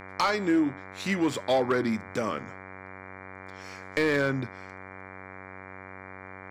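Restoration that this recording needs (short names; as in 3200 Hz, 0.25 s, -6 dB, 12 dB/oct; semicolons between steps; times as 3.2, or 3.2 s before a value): clip repair -17.5 dBFS; de-hum 94.7 Hz, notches 25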